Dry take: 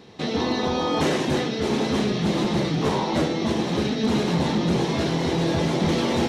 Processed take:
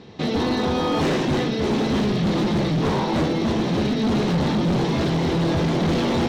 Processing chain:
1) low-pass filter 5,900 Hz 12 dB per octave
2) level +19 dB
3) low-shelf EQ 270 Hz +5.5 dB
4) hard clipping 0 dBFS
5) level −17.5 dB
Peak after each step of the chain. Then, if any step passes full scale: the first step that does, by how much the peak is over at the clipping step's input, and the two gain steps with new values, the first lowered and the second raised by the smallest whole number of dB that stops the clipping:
−15.0, +4.0, +8.5, 0.0, −17.5 dBFS
step 2, 8.5 dB
step 2 +10 dB, step 5 −8.5 dB

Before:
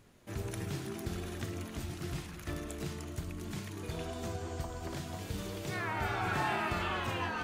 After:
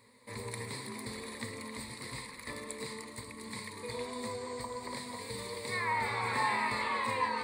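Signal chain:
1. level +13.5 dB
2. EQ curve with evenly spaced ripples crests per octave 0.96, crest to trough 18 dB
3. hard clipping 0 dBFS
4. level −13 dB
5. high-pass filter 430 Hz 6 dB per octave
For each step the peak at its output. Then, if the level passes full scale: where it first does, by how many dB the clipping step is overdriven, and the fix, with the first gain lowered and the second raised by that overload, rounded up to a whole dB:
−5.0, −5.0, −5.0, −18.0, −19.5 dBFS
no step passes full scale

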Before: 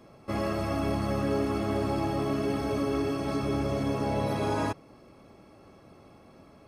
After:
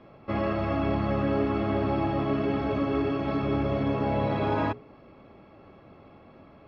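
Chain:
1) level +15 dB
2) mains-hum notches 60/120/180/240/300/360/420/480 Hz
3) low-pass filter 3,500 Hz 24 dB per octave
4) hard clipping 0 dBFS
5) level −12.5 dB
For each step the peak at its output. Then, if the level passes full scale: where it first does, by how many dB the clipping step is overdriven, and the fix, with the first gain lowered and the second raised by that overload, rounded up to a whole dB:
−1.5, −1.0, −1.5, −1.5, −14.0 dBFS
no step passes full scale

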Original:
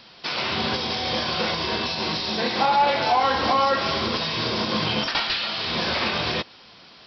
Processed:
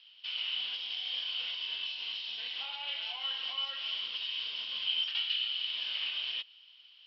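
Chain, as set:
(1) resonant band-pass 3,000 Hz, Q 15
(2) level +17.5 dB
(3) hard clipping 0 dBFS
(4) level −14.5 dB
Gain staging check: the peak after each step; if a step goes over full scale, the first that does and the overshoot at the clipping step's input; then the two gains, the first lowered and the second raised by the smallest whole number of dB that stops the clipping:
−22.0, −4.5, −4.5, −19.0 dBFS
no step passes full scale

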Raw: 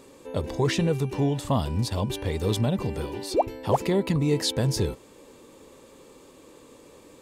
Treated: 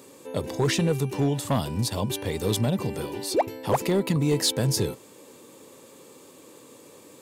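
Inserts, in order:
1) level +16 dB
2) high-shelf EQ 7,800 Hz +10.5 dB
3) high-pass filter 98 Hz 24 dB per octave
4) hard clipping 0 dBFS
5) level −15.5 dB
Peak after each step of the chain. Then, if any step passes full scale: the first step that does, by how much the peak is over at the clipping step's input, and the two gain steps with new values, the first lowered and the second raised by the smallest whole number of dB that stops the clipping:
+4.5, +5.0, +6.5, 0.0, −15.5 dBFS
step 1, 6.5 dB
step 1 +9 dB, step 5 −8.5 dB

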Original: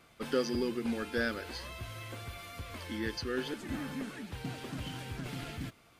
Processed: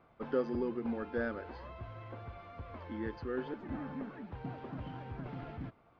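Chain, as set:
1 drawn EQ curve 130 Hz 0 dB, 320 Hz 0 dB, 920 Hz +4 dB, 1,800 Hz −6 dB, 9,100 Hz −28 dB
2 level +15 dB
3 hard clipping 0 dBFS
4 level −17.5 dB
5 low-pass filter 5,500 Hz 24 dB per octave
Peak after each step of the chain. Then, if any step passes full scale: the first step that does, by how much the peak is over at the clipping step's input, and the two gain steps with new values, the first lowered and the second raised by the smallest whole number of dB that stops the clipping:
−17.5, −2.5, −2.5, −20.0, −20.0 dBFS
no step passes full scale

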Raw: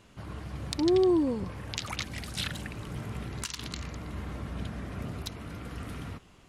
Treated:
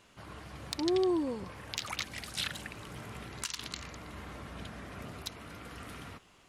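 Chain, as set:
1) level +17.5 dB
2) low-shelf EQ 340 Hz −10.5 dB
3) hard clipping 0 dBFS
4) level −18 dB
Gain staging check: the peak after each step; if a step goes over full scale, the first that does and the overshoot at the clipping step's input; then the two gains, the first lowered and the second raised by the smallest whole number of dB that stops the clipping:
+6.5, +6.0, 0.0, −18.0 dBFS
step 1, 6.0 dB
step 1 +11.5 dB, step 4 −12 dB

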